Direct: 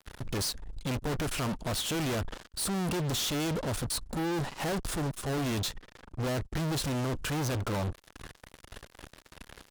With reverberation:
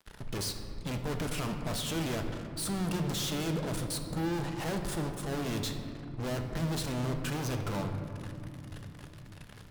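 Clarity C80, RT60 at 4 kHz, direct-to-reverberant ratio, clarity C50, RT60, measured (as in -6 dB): 7.0 dB, 1.3 s, 4.5 dB, 6.0 dB, 2.9 s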